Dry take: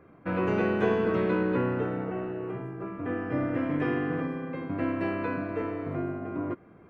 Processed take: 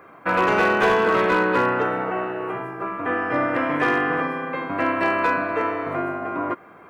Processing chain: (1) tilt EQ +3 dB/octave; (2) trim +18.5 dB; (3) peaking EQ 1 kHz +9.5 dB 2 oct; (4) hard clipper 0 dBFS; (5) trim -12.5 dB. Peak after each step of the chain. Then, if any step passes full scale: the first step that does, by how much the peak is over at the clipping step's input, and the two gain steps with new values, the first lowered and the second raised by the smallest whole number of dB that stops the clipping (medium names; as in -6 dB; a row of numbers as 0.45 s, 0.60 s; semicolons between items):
-15.5 dBFS, +3.0 dBFS, +8.5 dBFS, 0.0 dBFS, -12.5 dBFS; step 2, 8.5 dB; step 2 +9.5 dB, step 5 -3.5 dB